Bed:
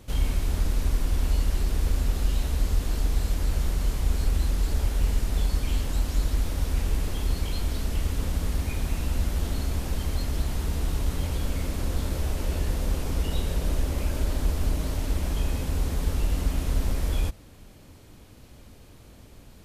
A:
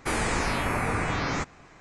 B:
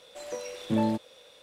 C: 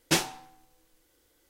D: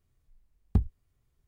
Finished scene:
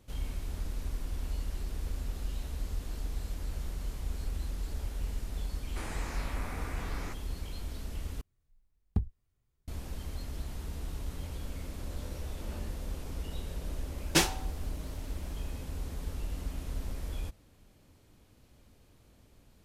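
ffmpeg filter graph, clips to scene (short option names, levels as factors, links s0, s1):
-filter_complex "[0:a]volume=0.266[s0];[2:a]volume=37.6,asoftclip=hard,volume=0.0266[s1];[s0]asplit=2[s2][s3];[s2]atrim=end=8.214[s4];[4:a]atrim=end=1.47,asetpts=PTS-STARTPTS,volume=0.562[s5];[s3]atrim=start=9.676[s6];[1:a]atrim=end=1.8,asetpts=PTS-STARTPTS,volume=0.178,afade=t=in:d=0.004:c=hsin,afade=t=out:st=1.796:d=0.004:c=hsin,adelay=5700[s7];[s1]atrim=end=1.42,asetpts=PTS-STARTPTS,volume=0.158,afade=t=in:d=0.004:c=hsin,afade=t=out:st=1.416:d=0.004:c=hsin,adelay=11710[s8];[3:a]atrim=end=1.49,asetpts=PTS-STARTPTS,volume=0.944,afade=t=in:d=0.004:c=hsin,afade=t=out:st=1.486:d=0.004:c=hsin,adelay=14040[s9];[s4][s5]acrossfade=d=0.004:c1=hsin:c2=hsin[s10];[s10][s6]acrossfade=d=0.004:c1=hsin:c2=hsin[s11];[s11][s7][s8][s9]amix=inputs=4:normalize=0"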